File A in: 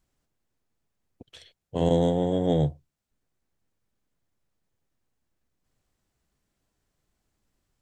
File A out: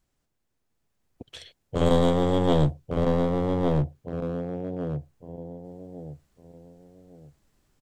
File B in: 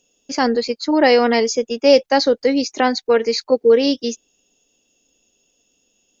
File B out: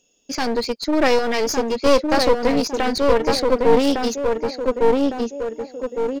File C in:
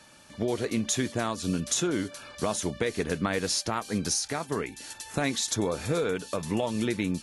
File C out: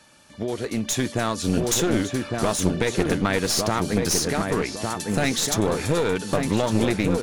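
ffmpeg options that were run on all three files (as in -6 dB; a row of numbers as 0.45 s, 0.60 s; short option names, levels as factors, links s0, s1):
-filter_complex "[0:a]asplit=2[s0][s1];[s1]adelay=1157,lowpass=f=1300:p=1,volume=0.668,asplit=2[s2][s3];[s3]adelay=1157,lowpass=f=1300:p=1,volume=0.32,asplit=2[s4][s5];[s5]adelay=1157,lowpass=f=1300:p=1,volume=0.32,asplit=2[s6][s7];[s7]adelay=1157,lowpass=f=1300:p=1,volume=0.32[s8];[s2][s4][s6][s8]amix=inputs=4:normalize=0[s9];[s0][s9]amix=inputs=2:normalize=0,dynaudnorm=f=110:g=17:m=2.24,aeval=exprs='clip(val(0),-1,0.0631)':c=same"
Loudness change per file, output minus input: -0.5 LU, -3.0 LU, +6.0 LU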